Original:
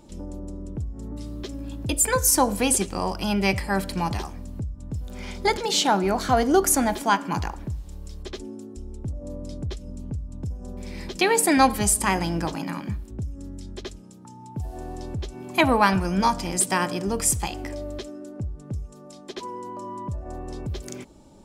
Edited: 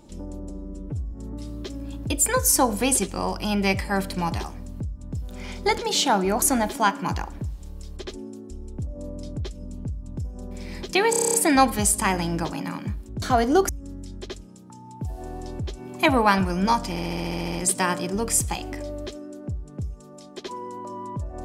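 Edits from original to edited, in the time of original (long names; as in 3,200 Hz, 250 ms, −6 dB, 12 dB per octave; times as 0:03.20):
0:00.49–0:00.91: time-stretch 1.5×
0:06.21–0:06.68: move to 0:13.24
0:11.36: stutter 0.03 s, 9 plays
0:16.45: stutter 0.07 s, 10 plays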